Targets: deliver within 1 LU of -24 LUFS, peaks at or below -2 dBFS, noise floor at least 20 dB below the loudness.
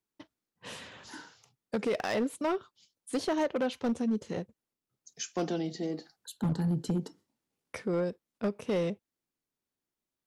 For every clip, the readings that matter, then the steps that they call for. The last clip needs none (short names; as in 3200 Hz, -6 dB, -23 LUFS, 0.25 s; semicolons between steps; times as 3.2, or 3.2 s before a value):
clipped 1.2%; flat tops at -24.0 dBFS; loudness -33.0 LUFS; peak -24.0 dBFS; loudness target -24.0 LUFS
-> clip repair -24 dBFS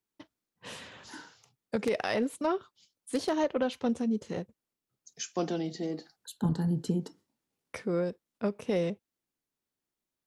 clipped 0.0%; loudness -32.5 LUFS; peak -15.0 dBFS; loudness target -24.0 LUFS
-> gain +8.5 dB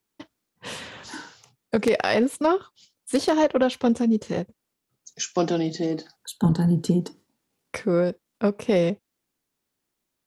loudness -24.0 LUFS; peak -6.5 dBFS; noise floor -81 dBFS